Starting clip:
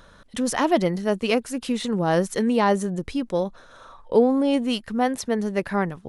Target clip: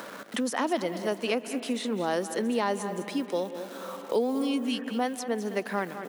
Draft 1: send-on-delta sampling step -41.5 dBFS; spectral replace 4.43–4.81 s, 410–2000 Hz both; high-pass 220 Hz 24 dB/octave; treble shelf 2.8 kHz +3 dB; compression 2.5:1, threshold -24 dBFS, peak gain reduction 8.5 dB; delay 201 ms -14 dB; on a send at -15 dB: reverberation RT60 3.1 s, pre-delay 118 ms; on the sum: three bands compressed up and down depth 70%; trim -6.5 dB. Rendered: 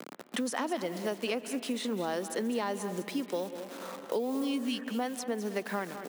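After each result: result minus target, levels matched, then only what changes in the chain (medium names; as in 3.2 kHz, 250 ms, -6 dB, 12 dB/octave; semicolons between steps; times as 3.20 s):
compression: peak gain reduction +8.5 dB; send-on-delta sampling: distortion +9 dB
remove: compression 2.5:1, threshold -24 dBFS, peak gain reduction 8.5 dB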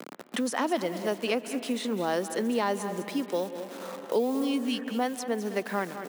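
send-on-delta sampling: distortion +9 dB
change: send-on-delta sampling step -49.5 dBFS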